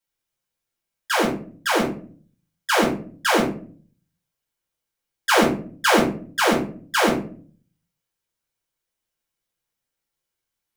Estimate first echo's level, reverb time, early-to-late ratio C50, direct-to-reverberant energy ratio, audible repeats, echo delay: none, 0.45 s, 8.0 dB, -6.5 dB, none, none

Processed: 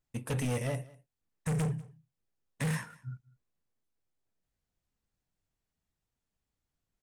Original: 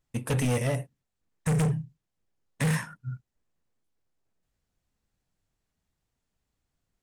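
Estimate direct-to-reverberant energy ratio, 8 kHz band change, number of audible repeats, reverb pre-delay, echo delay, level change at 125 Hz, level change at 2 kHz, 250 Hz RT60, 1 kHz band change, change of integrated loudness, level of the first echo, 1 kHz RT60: none, -6.0 dB, 1, none, 0.196 s, -6.0 dB, -6.0 dB, none, -6.0 dB, -6.0 dB, -22.5 dB, none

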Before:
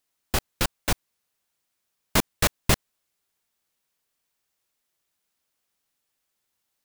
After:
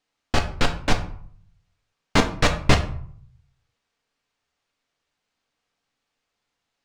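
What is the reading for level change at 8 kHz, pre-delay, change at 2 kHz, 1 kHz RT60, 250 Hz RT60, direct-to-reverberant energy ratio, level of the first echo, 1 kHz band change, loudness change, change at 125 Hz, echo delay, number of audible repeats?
-5.0 dB, 4 ms, +4.5 dB, 0.60 s, 0.65 s, 4.0 dB, none, +5.5 dB, +3.0 dB, +6.0 dB, none, none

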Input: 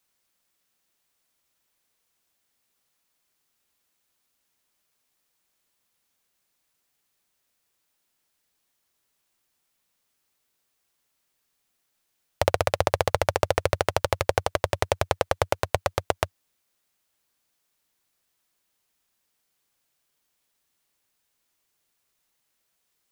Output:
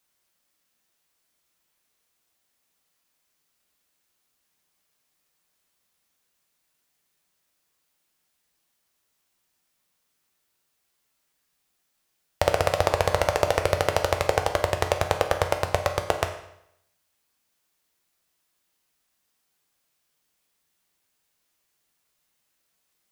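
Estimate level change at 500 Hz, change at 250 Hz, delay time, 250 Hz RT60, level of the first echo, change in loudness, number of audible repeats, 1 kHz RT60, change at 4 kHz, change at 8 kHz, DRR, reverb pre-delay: +1.5 dB, +1.5 dB, none, 0.75 s, none, +1.0 dB, none, 0.75 s, +1.0 dB, +1.0 dB, 4.5 dB, 7 ms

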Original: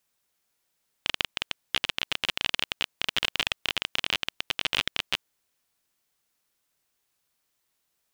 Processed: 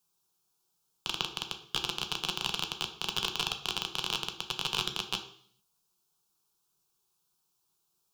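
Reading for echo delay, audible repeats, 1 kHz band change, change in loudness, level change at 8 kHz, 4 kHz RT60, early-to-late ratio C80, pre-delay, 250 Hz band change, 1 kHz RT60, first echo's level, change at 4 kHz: none, none, -0.5 dB, -4.0 dB, +0.5 dB, 0.65 s, 14.0 dB, 3 ms, 0.0 dB, 0.55 s, none, -3.5 dB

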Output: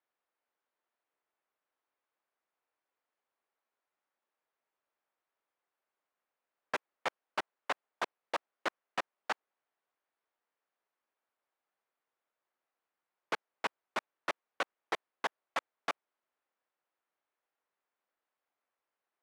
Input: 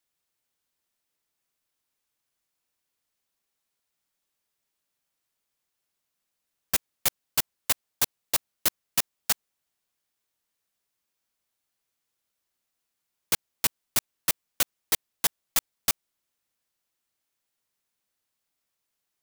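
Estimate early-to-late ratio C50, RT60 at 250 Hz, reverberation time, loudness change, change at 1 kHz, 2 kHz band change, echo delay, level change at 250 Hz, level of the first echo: none, none, none, -12.0 dB, +2.0 dB, -2.5 dB, none, -6.0 dB, none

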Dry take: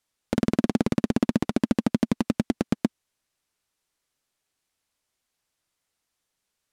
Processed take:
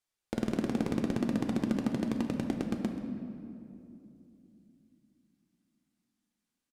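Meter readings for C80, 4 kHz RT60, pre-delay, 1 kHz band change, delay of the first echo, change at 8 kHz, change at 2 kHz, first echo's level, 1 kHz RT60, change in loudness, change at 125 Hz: 6.5 dB, 1.6 s, 3 ms, -7.0 dB, 0.132 s, -8.0 dB, -7.0 dB, -16.0 dB, 2.4 s, -7.0 dB, -7.0 dB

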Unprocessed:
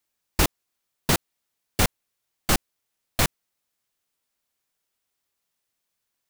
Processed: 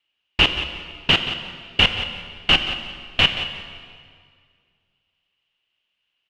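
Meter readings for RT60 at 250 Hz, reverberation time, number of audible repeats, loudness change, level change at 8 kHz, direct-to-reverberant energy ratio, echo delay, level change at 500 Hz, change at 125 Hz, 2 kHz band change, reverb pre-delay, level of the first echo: 2.1 s, 2.0 s, 1, +6.0 dB, -14.5 dB, 6.0 dB, 0.179 s, +0.5 dB, -0.5 dB, +10.0 dB, 8 ms, -12.5 dB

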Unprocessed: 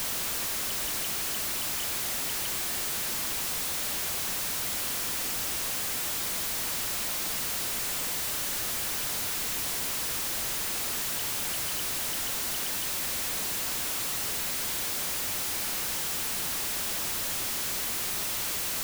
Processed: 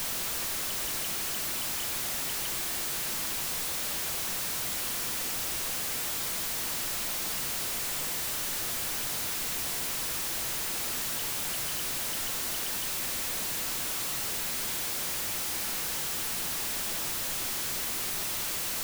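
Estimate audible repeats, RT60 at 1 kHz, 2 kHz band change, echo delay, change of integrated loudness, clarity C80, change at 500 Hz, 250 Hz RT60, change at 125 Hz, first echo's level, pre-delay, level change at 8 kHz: none, 0.40 s, -1.0 dB, none, -1.5 dB, 23.5 dB, -1.0 dB, 0.80 s, -1.0 dB, none, 6 ms, -1.5 dB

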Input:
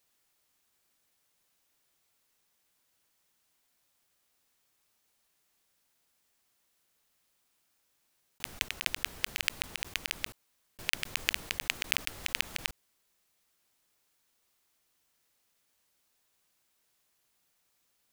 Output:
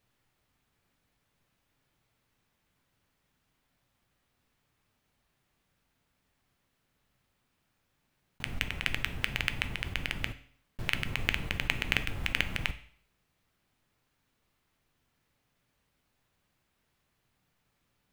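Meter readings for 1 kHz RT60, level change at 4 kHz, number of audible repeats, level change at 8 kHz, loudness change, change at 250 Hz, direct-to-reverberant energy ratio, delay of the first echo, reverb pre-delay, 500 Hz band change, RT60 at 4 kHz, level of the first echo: 0.55 s, -2.0 dB, none, -8.5 dB, +0.5 dB, +10.0 dB, 10.0 dB, none, 7 ms, +4.5 dB, 0.55 s, none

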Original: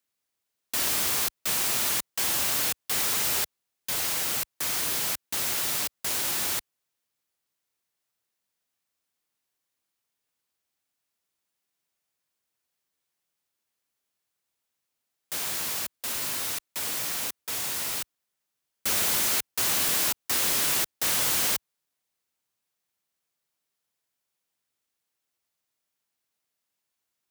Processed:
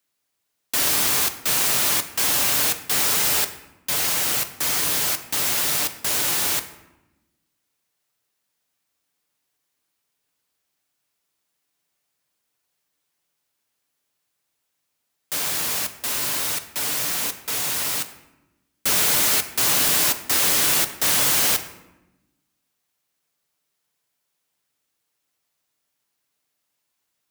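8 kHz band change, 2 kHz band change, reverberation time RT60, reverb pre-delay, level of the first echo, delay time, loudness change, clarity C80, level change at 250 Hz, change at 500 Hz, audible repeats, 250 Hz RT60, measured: +6.0 dB, +6.5 dB, 1.0 s, 7 ms, none, none, +6.0 dB, 14.0 dB, +6.5 dB, +6.5 dB, none, 1.5 s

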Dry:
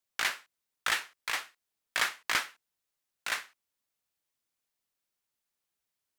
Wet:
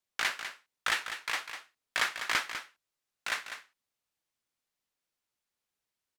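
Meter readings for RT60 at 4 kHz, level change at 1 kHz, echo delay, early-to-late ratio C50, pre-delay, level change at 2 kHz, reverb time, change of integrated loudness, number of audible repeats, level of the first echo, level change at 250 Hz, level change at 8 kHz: none, +0.5 dB, 0.199 s, none, none, +0.5 dB, none, -0.5 dB, 1, -9.5 dB, +0.5 dB, -2.0 dB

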